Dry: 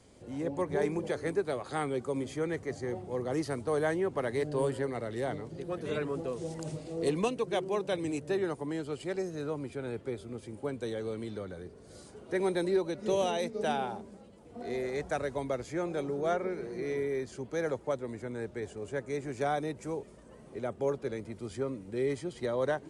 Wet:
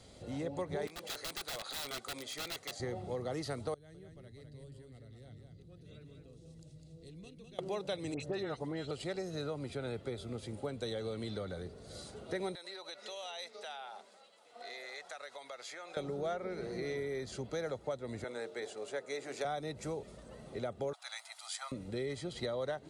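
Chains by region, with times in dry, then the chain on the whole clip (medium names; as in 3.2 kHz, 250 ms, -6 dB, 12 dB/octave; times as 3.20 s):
0.87–2.80 s: high-pass 1.4 kHz 6 dB/octave + integer overflow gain 38 dB
3.74–7.59 s: amplifier tone stack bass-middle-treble 10-0-1 + compression 1.5:1, threshold -55 dBFS + delay 203 ms -5.5 dB
8.14–8.91 s: distance through air 57 m + phase dispersion highs, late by 66 ms, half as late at 2.2 kHz
12.55–15.97 s: high-pass 950 Hz + treble shelf 8.3 kHz -4.5 dB + compression 5:1, threshold -46 dBFS
18.24–19.45 s: high-pass 390 Hz + hum notches 50/100/150/200/250/300/350/400/450/500 Hz
20.93–21.72 s: steep high-pass 700 Hz 72 dB/octave + treble shelf 5.3 kHz +10.5 dB
whole clip: peaking EQ 3.9 kHz +8.5 dB 0.55 oct; comb 1.5 ms, depth 33%; compression 4:1, threshold -37 dBFS; trim +1.5 dB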